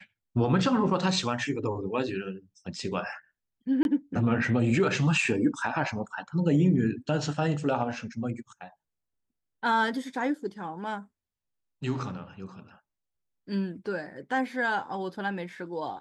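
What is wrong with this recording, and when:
3.83–3.85 s: dropout 21 ms

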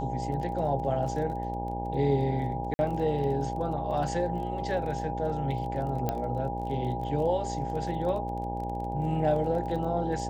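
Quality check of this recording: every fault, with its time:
buzz 60 Hz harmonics 16 -35 dBFS
crackle 23 per s -37 dBFS
whine 810 Hz -34 dBFS
2.74–2.79 s: dropout 50 ms
6.09 s: pop -15 dBFS

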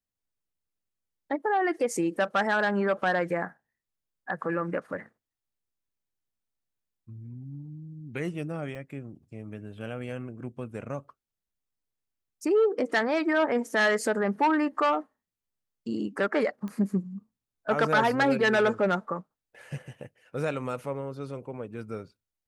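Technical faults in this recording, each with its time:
8.75 s: dropout 2.5 ms
16.68 s: pop -26 dBFS

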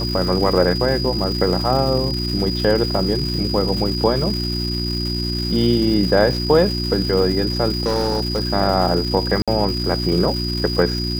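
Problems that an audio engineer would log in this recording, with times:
crackle 510 per s -26 dBFS
hum 60 Hz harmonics 6 -24 dBFS
whine 4.9 kHz -25 dBFS
7.73–8.45 s: clipped -15 dBFS
9.42–9.48 s: dropout 56 ms

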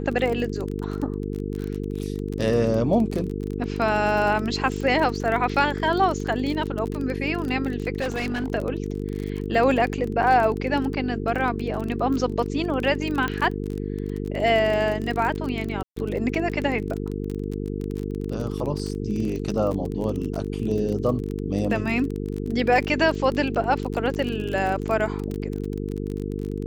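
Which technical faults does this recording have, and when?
buzz 50 Hz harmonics 9 -29 dBFS
crackle 29 per s -27 dBFS
8.00–8.50 s: clipped -22.5 dBFS
13.28 s: pop -13 dBFS
15.83–15.96 s: dropout 134 ms

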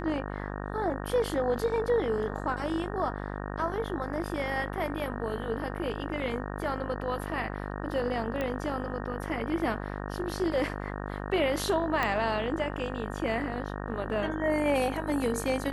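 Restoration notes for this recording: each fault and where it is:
buzz 50 Hz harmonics 37 -36 dBFS
8.41 s: pop -19 dBFS
12.03 s: pop -14 dBFS

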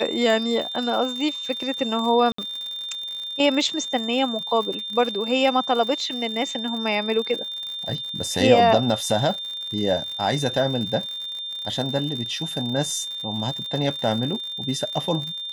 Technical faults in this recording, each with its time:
crackle 84 per s -30 dBFS
whine 3.6 kHz -29 dBFS
2.32–2.38 s: dropout 64 ms

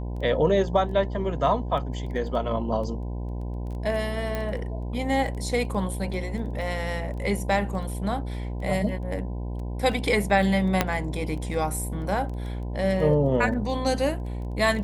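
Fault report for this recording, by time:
buzz 60 Hz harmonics 17 -31 dBFS
crackle 10 per s -34 dBFS
4.35 s: pop -16 dBFS
10.81 s: pop -5 dBFS

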